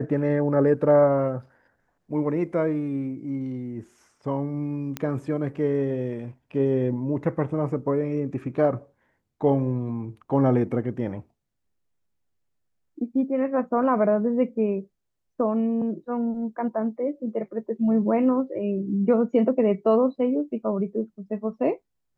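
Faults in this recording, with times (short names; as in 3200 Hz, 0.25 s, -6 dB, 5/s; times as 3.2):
4.97 pop -14 dBFS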